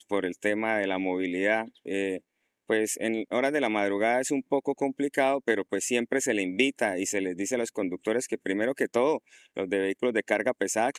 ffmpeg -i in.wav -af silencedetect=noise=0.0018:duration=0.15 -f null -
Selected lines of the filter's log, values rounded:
silence_start: 2.20
silence_end: 2.69 | silence_duration: 0.48